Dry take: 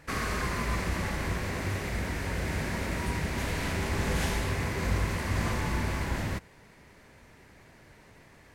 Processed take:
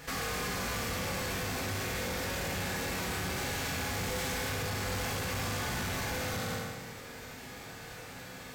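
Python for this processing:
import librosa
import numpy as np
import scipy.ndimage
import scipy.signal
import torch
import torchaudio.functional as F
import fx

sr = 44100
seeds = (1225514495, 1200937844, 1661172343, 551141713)

p1 = fx.envelope_flatten(x, sr, power=0.6)
p2 = fx.peak_eq(p1, sr, hz=10000.0, db=-7.0, octaves=0.28)
p3 = fx.rev_fdn(p2, sr, rt60_s=1.2, lf_ratio=1.0, hf_ratio=0.85, size_ms=12.0, drr_db=-4.0)
p4 = fx.over_compress(p3, sr, threshold_db=-35.0, ratio=-1.0)
p5 = p3 + (p4 * 10.0 ** (-1.0 / 20.0))
p6 = 10.0 ** (-24.5 / 20.0) * np.tanh(p5 / 10.0 ** (-24.5 / 20.0))
y = p6 * 10.0 ** (-6.5 / 20.0)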